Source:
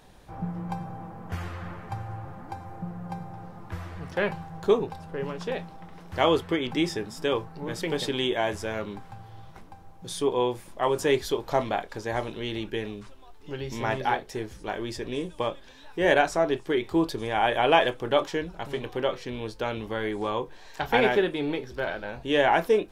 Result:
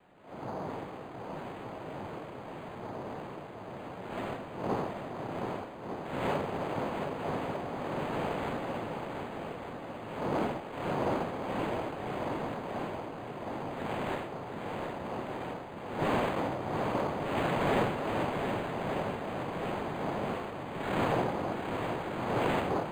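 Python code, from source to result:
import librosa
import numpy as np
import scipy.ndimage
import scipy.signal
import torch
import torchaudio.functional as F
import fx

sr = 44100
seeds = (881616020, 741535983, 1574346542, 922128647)

y = fx.spec_blur(x, sr, span_ms=206.0)
y = fx.noise_vocoder(y, sr, seeds[0], bands=2)
y = fx.echo_swing(y, sr, ms=1200, ratio=1.5, feedback_pct=58, wet_db=-6.5)
y = np.interp(np.arange(len(y)), np.arange(len(y))[::8], y[::8])
y = y * librosa.db_to_amplitude(-3.5)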